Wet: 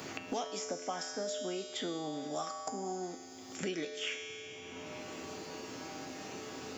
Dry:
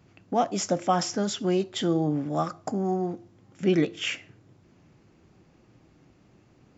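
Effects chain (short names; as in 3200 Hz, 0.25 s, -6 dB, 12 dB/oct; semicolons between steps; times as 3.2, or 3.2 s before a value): tone controls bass -12 dB, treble +6 dB; resonator 87 Hz, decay 1.2 s, harmonics odd, mix 90%; thinning echo 92 ms, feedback 75%, high-pass 170 Hz, level -23.5 dB; three-band squash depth 100%; gain +7.5 dB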